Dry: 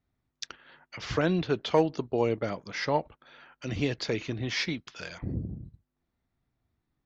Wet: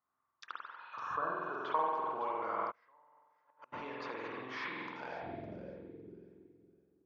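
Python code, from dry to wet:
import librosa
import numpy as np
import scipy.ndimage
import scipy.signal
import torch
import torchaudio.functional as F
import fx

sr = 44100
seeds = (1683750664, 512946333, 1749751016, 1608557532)

p1 = fx.spec_repair(x, sr, seeds[0], start_s=0.82, length_s=0.69, low_hz=1800.0, high_hz=5200.0, source='after')
p2 = fx.rev_spring(p1, sr, rt60_s=1.3, pass_ms=(46,), chirp_ms=35, drr_db=-3.0)
p3 = fx.over_compress(p2, sr, threshold_db=-29.0, ratio=-0.5)
p4 = p2 + F.gain(torch.from_numpy(p3), 0.0).numpy()
p5 = fx.echo_feedback(p4, sr, ms=559, feedback_pct=23, wet_db=-12)
p6 = fx.gate_flip(p5, sr, shuts_db=-20.0, range_db=-33, at=(2.7, 3.72), fade=0.02)
p7 = fx.filter_sweep_bandpass(p6, sr, from_hz=1100.0, to_hz=410.0, start_s=4.7, end_s=6.12, q=6.5)
y = F.gain(torch.from_numpy(p7), 1.5).numpy()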